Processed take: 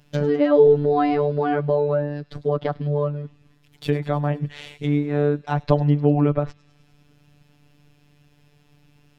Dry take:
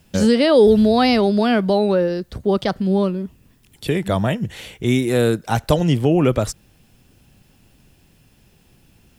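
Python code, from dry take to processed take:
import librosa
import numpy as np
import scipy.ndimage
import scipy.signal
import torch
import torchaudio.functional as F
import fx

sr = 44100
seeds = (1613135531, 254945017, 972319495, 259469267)

p1 = scipy.ndimage.median_filter(x, 5, mode='constant')
p2 = fx.env_lowpass_down(p1, sr, base_hz=1400.0, full_db=-15.0)
p3 = fx.robotise(p2, sr, hz=146.0)
y = p3 + fx.echo_wet_highpass(p3, sr, ms=102, feedback_pct=69, hz=4300.0, wet_db=-13.5, dry=0)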